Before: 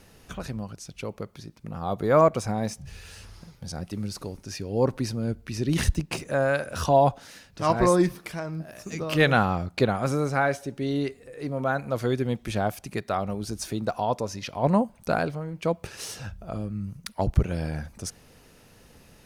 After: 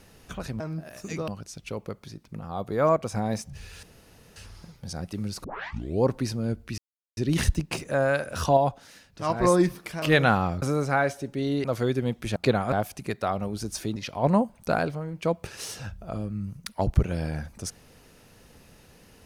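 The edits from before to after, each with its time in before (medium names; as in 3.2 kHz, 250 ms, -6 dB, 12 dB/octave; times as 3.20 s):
1.72–2.46 s: gain -3.5 dB
3.15 s: insert room tone 0.53 s
4.23 s: tape start 0.59 s
5.57 s: insert silence 0.39 s
6.97–7.84 s: gain -4 dB
8.42–9.10 s: move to 0.60 s
9.70–10.06 s: move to 12.59 s
11.08–11.87 s: delete
13.83–14.36 s: delete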